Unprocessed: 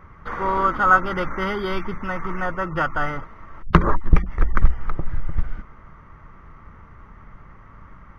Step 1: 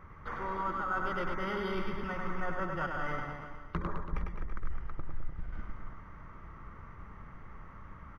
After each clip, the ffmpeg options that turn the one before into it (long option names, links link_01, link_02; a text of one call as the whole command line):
ffmpeg -i in.wav -af "areverse,acompressor=threshold=-27dB:ratio=5,areverse,aecho=1:1:100|210|331|464.1|610.5:0.631|0.398|0.251|0.158|0.1,volume=-6dB" out.wav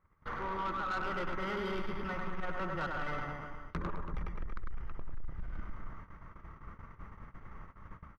ffmpeg -i in.wav -af "agate=range=-23dB:threshold=-46dB:ratio=16:detection=peak,asoftclip=type=tanh:threshold=-31dB,volume=1dB" out.wav